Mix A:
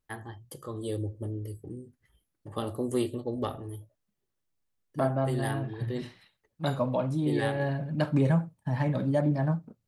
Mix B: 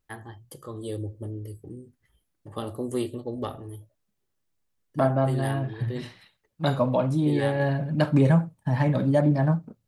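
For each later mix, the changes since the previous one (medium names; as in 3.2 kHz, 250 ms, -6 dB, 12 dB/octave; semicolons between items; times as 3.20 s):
second voice +5.0 dB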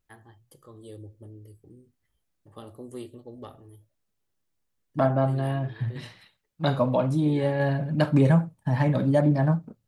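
first voice -10.5 dB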